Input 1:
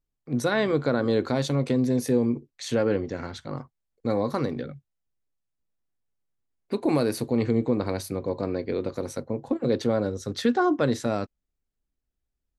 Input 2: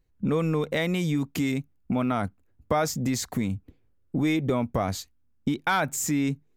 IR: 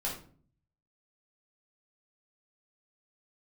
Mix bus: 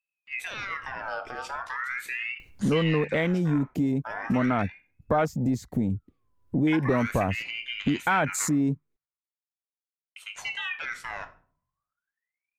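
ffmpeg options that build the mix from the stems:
-filter_complex "[0:a]alimiter=limit=-16.5dB:level=0:latency=1:release=63,aeval=exprs='val(0)*sin(2*PI*1800*n/s+1800*0.45/0.39*sin(2*PI*0.39*n/s))':c=same,volume=-8dB,asplit=3[a][b][c];[a]atrim=end=8.48,asetpts=PTS-STARTPTS,afade=t=out:st=8.476:d=0.004:c=hsin[d];[b]atrim=start=8.48:end=10.16,asetpts=PTS-STARTPTS,volume=0[e];[c]atrim=start=10.16,asetpts=PTS-STARTPTS,afade=t=in:d=0.004:c=hsin[f];[d][e][f]concat=n=3:v=0:a=1,asplit=2[g][h];[h]volume=-8.5dB[i];[1:a]asoftclip=type=tanh:threshold=-15dB,afwtdn=0.02,acompressor=mode=upward:threshold=-32dB:ratio=2.5,adelay=2400,volume=2dB[j];[2:a]atrim=start_sample=2205[k];[i][k]afir=irnorm=-1:irlink=0[l];[g][j][l]amix=inputs=3:normalize=0"

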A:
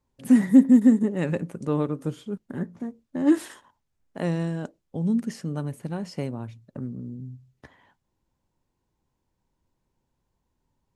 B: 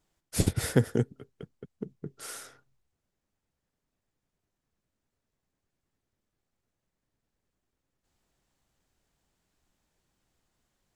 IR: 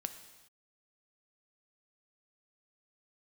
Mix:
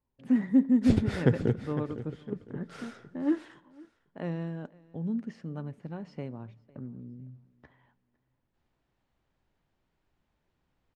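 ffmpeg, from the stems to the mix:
-filter_complex "[0:a]volume=-9dB,asplit=3[a][b][c];[b]volume=-15.5dB[d];[c]volume=-23dB[e];[1:a]adelay=500,volume=-2.5dB,asplit=3[f][g][h];[g]volume=-10dB[i];[h]volume=-11dB[j];[2:a]atrim=start_sample=2205[k];[d][i]amix=inputs=2:normalize=0[l];[l][k]afir=irnorm=-1:irlink=0[m];[e][j]amix=inputs=2:normalize=0,aecho=0:1:506|1012|1518|2024:1|0.27|0.0729|0.0197[n];[a][f][m][n]amix=inputs=4:normalize=0,lowpass=3.1k"

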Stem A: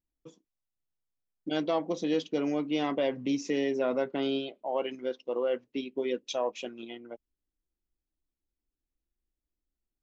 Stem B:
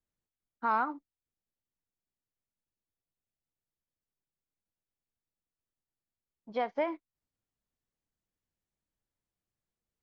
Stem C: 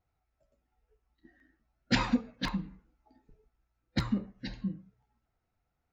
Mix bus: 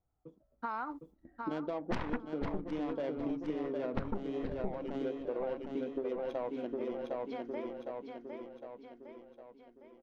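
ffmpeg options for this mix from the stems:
-filter_complex "[0:a]alimiter=limit=-24dB:level=0:latency=1:release=453,adynamicsmooth=sensitivity=1.5:basefreq=750,volume=-1.5dB,asplit=3[a][b][c];[b]volume=-4dB[d];[1:a]agate=range=-33dB:threshold=-56dB:ratio=3:detection=peak,acompressor=threshold=-31dB:ratio=6,volume=-3.5dB,asplit=2[e][f];[f]volume=-8dB[g];[2:a]lowpass=1k,aeval=exprs='0.158*(cos(1*acos(clip(val(0)/0.158,-1,1)))-cos(1*PI/2))+0.0631*(cos(8*acos(clip(val(0)/0.158,-1,1)))-cos(8*PI/2))':c=same,volume=-2dB,asplit=2[h][i];[i]volume=-20dB[j];[c]apad=whole_len=442054[k];[e][k]sidechaincompress=threshold=-50dB:ratio=8:attack=16:release=1180[l];[d][g][j]amix=inputs=3:normalize=0,aecho=0:1:758|1516|2274|3032|3790|4548|5306:1|0.49|0.24|0.118|0.0576|0.0282|0.0138[m];[a][l][h][m]amix=inputs=4:normalize=0,dynaudnorm=f=160:g=7:m=4dB,highshelf=f=4.4k:g=5.5,acompressor=threshold=-33dB:ratio=5"

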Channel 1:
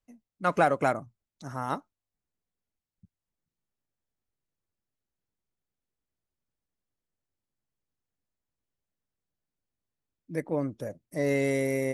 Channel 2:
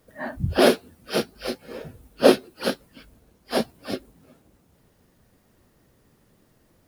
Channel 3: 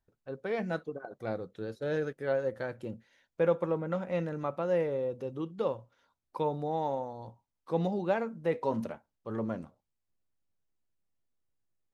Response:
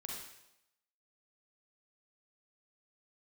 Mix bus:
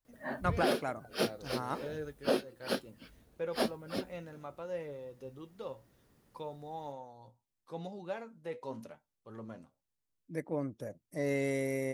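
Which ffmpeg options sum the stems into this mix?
-filter_complex "[0:a]volume=-6dB[a];[1:a]adelay=50,volume=-7dB[b];[2:a]highshelf=f=3.3k:g=11,flanger=delay=6.5:depth=1.9:regen=63:speed=1:shape=triangular,volume=-7.5dB[c];[a][b][c]amix=inputs=3:normalize=0,alimiter=limit=-18.5dB:level=0:latency=1:release=466"

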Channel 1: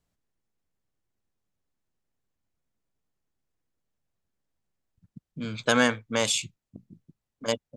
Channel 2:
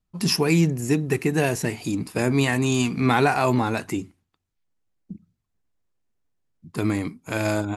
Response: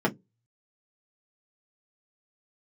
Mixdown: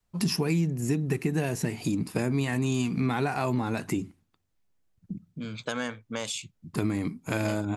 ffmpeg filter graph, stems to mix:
-filter_complex "[0:a]acompressor=threshold=-35dB:ratio=2,volume=-0.5dB[a];[1:a]volume=0dB[b];[a][b]amix=inputs=2:normalize=0,adynamicequalizer=threshold=0.0178:dfrequency=170:dqfactor=0.9:tfrequency=170:tqfactor=0.9:attack=5:release=100:ratio=0.375:range=3:mode=boostabove:tftype=bell,acompressor=threshold=-25dB:ratio=4"

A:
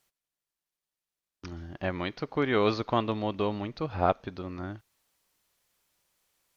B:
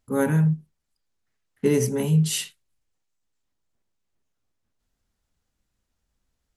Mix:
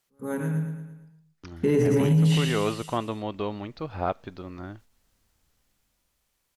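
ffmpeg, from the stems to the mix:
-filter_complex "[0:a]volume=-1.5dB,asplit=2[a][b];[1:a]dynaudnorm=f=200:g=11:m=15dB,volume=-3.5dB,asplit=2[c][d];[d]volume=-5.5dB[e];[b]apad=whole_len=289551[f];[c][f]sidechaingate=range=-39dB:threshold=-51dB:ratio=16:detection=peak[g];[e]aecho=0:1:113|226|339|452|565|678|791:1|0.51|0.26|0.133|0.0677|0.0345|0.0176[h];[a][g][h]amix=inputs=3:normalize=0,acrossover=split=3100[i][j];[j]acompressor=threshold=-42dB:ratio=4:attack=1:release=60[k];[i][k]amix=inputs=2:normalize=0,alimiter=limit=-14dB:level=0:latency=1:release=25"

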